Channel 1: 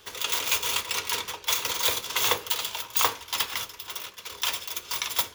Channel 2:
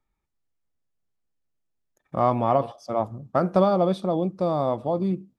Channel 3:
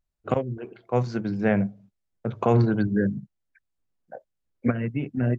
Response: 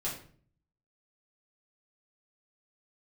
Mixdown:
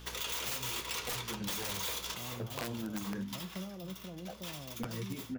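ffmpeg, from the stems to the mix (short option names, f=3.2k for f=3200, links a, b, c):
-filter_complex "[0:a]volume=26dB,asoftclip=hard,volume=-26dB,aeval=exprs='val(0)+0.00398*(sin(2*PI*60*n/s)+sin(2*PI*2*60*n/s)/2+sin(2*PI*3*60*n/s)/3+sin(2*PI*4*60*n/s)/4+sin(2*PI*5*60*n/s)/5)':c=same,volume=2.5dB,asplit=2[a][b];[b]volume=-20.5dB[c];[1:a]acrossover=split=290[d][e];[e]acompressor=threshold=-38dB:ratio=4[f];[d][f]amix=inputs=2:normalize=0,volume=-12dB,asplit=2[g][h];[2:a]acompressor=threshold=-30dB:ratio=1.5,asplit=2[i][j];[j]adelay=10.2,afreqshift=-1.1[k];[i][k]amix=inputs=2:normalize=1,adelay=150,volume=0dB[l];[h]apad=whole_len=235688[m];[a][m]sidechaincompress=threshold=-52dB:ratio=8:attack=7.4:release=692[n];[3:a]atrim=start_sample=2205[o];[c][o]afir=irnorm=-1:irlink=0[p];[n][g][l][p]amix=inputs=4:normalize=0,aeval=exprs='(mod(9.44*val(0)+1,2)-1)/9.44':c=same,flanger=delay=6:depth=7.7:regen=-88:speed=0.84:shape=sinusoidal,acompressor=threshold=-35dB:ratio=6"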